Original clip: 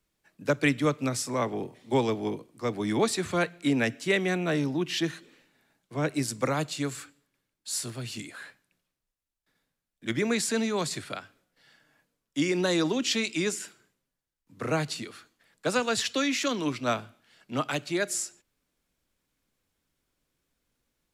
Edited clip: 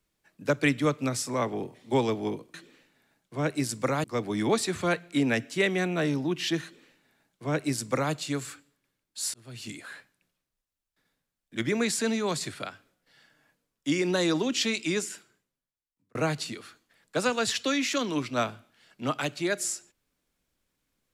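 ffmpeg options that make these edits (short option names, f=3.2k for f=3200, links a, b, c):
-filter_complex "[0:a]asplit=5[a][b][c][d][e];[a]atrim=end=2.542[f];[b]atrim=start=5.128:end=6.632[g];[c]atrim=start=2.538:end=7.84,asetpts=PTS-STARTPTS,afade=t=out:st=5.298:d=0.004:c=hsin[h];[d]atrim=start=7.84:end=14.65,asetpts=PTS-STARTPTS,afade=t=in:d=0.4,afade=t=out:st=5.6:d=1.21[i];[e]atrim=start=14.65,asetpts=PTS-STARTPTS,afade=t=in:d=0.004:c=hsin[j];[f][g]acrossfade=d=0.004:c1=hsin:c2=hsin[k];[h][i][j]concat=n=3:v=0:a=1[l];[k][l]acrossfade=d=0.004:c1=hsin:c2=hsin"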